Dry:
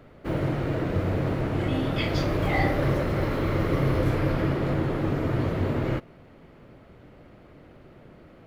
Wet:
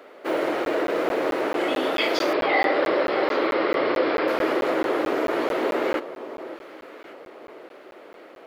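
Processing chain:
high-pass filter 360 Hz 24 dB per octave
in parallel at −1.5 dB: brickwall limiter −23.5 dBFS, peak gain reduction 9 dB
0:02.33–0:04.28: on the sum: Butterworth low-pass 5,200 Hz 96 dB per octave
delay that swaps between a low-pass and a high-pass 570 ms, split 1,100 Hz, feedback 57%, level −12 dB
regular buffer underruns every 0.22 s, samples 512, zero, from 0:00.65
level +3 dB

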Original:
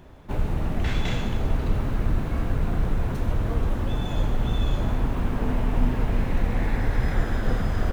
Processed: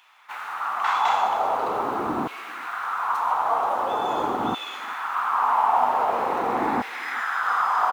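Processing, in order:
auto-filter high-pass saw down 0.44 Hz 270–2,600 Hz
flat-topped bell 1,000 Hz +13 dB 1.1 octaves
far-end echo of a speakerphone 390 ms, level −20 dB
level +1 dB

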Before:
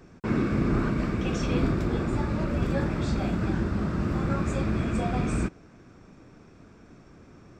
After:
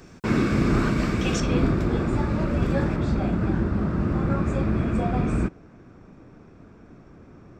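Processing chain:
high-shelf EQ 2,700 Hz +8.5 dB, from 0:01.40 −3 dB, from 0:02.96 −11 dB
level +3.5 dB

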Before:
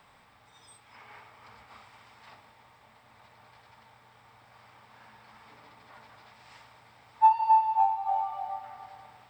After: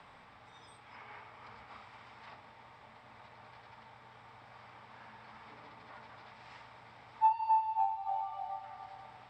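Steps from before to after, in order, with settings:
high-frequency loss of the air 96 metres
multiband upward and downward compressor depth 40%

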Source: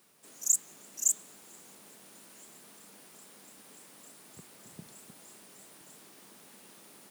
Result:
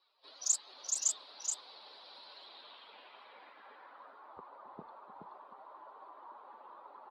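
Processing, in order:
spectral dynamics exaggerated over time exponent 2
octave-band graphic EQ 125/500/1,000/2,000/4,000 Hz −11/+4/+12/−4/+11 dB
single-tap delay 425 ms −4.5 dB
low-pass filter sweep 4,600 Hz → 1,100 Hz, 0:02.27–0:04.43

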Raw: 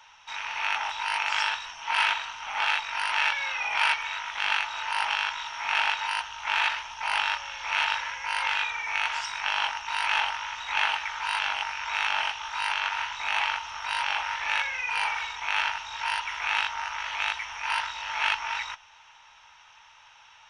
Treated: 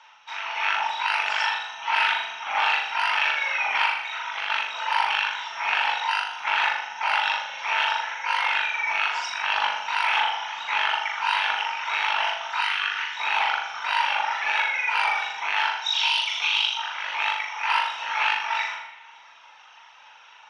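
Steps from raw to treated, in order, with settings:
0:12.61–0:13.16: gain on a spectral selection 490–1,100 Hz −11 dB
reverb reduction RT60 0.79 s
high-pass filter 270 Hz 12 dB per octave
reverb reduction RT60 0.84 s
0:15.82–0:16.76: high shelf with overshoot 2,400 Hz +10.5 dB, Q 3
automatic gain control gain up to 4.5 dB
brickwall limiter −13.5 dBFS, peak gain reduction 11.5 dB
0:03.85–0:04.50: downward compressor, threshold −29 dBFS, peak gain reduction 7 dB
0:09.39–0:09.91: bit-depth reduction 10 bits, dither none
high-frequency loss of the air 95 metres
flutter between parallel walls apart 6.9 metres, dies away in 0.66 s
spring reverb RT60 1.4 s, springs 40/49/55 ms, chirp 25 ms, DRR 8 dB
level +2 dB

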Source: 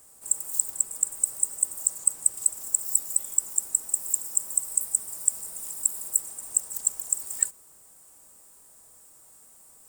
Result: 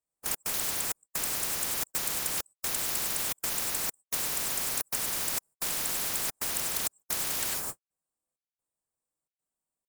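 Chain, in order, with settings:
high-shelf EQ 2,200 Hz −8.5 dB
reverb whose tail is shaped and stops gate 120 ms rising, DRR 0 dB
gate pattern "xxx.xxxx..xxx" 131 BPM −60 dB
noise gate −50 dBFS, range −60 dB
every bin compressed towards the loudest bin 10 to 1
level +2 dB

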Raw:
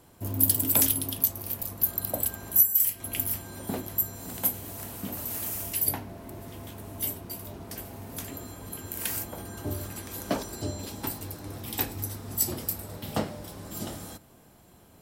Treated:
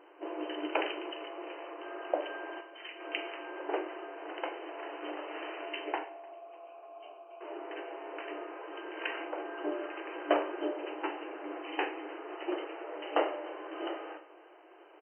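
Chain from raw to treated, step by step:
0:06.03–0:07.41: formant filter a
brick-wall band-pass 300–3,100 Hz
repeating echo 299 ms, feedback 46%, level −23.5 dB
four-comb reverb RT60 0.53 s, combs from 30 ms, DRR 8.5 dB
level +3.5 dB

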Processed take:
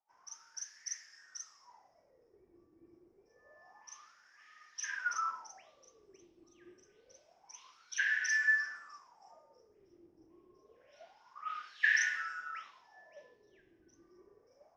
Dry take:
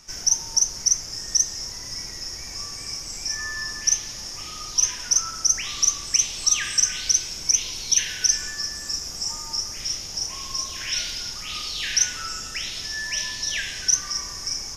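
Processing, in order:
LFO wah 0.27 Hz 330–1,800 Hz, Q 13
multiband upward and downward expander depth 100%
level +3 dB

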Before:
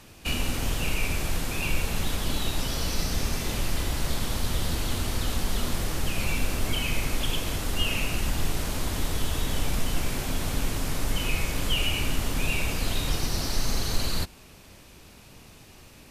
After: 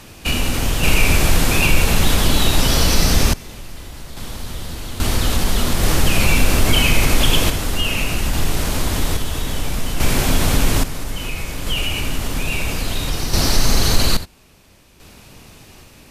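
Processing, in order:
in parallel at +1.5 dB: brickwall limiter −19 dBFS, peak gain reduction 8 dB
on the sum: sample-and-hold tremolo 1.2 Hz, depth 90%
level +7.5 dB

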